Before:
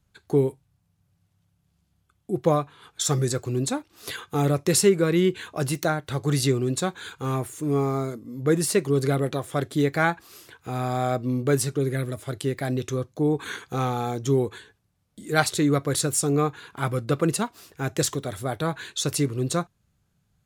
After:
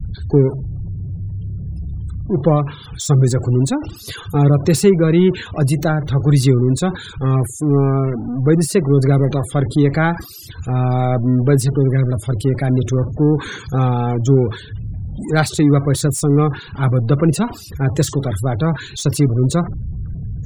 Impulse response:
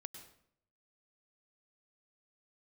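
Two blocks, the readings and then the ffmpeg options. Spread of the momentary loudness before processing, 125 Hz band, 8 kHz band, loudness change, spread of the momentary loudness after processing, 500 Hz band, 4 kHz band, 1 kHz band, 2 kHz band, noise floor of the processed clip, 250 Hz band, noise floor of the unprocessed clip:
9 LU, +13.0 dB, +1.0 dB, +8.5 dB, 13 LU, +6.0 dB, +2.5 dB, +4.5 dB, +3.0 dB, -36 dBFS, +9.5 dB, -70 dBFS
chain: -filter_complex "[0:a]aeval=exprs='val(0)+0.5*0.0422*sgn(val(0))':c=same,afftfilt=real='re*gte(hypot(re,im),0.0282)':imag='im*gte(hypot(re,im),0.0282)':win_size=1024:overlap=0.75,lowshelf=f=260:g=11.5,acrossover=split=160|3100[a][b][c];[b]agate=range=-33dB:threshold=-25dB:ratio=3:detection=peak[d];[c]asoftclip=type=tanh:threshold=-20dB[e];[a][d][e]amix=inputs=3:normalize=0,volume=1.5dB"

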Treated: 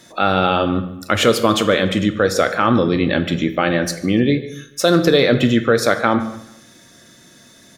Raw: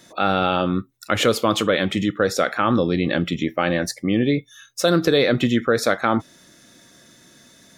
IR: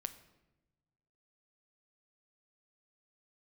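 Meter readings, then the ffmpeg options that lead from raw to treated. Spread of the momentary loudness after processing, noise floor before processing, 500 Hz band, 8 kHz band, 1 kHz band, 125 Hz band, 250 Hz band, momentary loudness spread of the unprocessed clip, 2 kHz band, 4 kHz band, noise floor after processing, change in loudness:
7 LU, -52 dBFS, +4.0 dB, +3.5 dB, +3.5 dB, +4.0 dB, +4.0 dB, 6 LU, +3.5 dB, +3.5 dB, -47 dBFS, +4.0 dB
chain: -filter_complex "[0:a]asplit=2[a][b];[b]adelay=145,lowpass=f=4.9k:p=1,volume=-19.5dB,asplit=2[c][d];[d]adelay=145,lowpass=f=4.9k:p=1,volume=0.43,asplit=2[e][f];[f]adelay=145,lowpass=f=4.9k:p=1,volume=0.43[g];[a][c][e][g]amix=inputs=4:normalize=0[h];[1:a]atrim=start_sample=2205,afade=t=out:st=0.25:d=0.01,atrim=end_sample=11466,asetrate=34839,aresample=44100[i];[h][i]afir=irnorm=-1:irlink=0,volume=4.5dB"

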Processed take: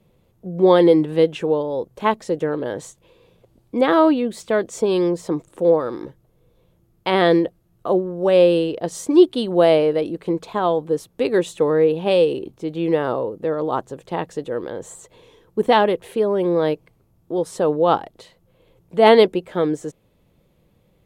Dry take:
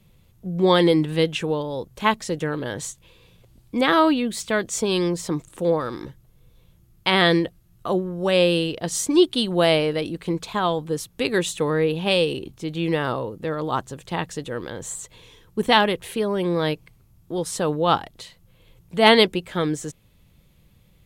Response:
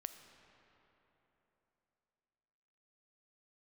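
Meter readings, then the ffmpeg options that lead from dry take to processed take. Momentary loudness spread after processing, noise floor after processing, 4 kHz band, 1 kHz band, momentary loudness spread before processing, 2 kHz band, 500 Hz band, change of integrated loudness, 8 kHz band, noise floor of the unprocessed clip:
13 LU, -61 dBFS, -6.5 dB, +1.5 dB, 14 LU, -4.0 dB, +5.5 dB, +3.0 dB, -7.5 dB, -57 dBFS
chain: -af "equalizer=f=490:w=0.47:g=14,volume=-8dB"

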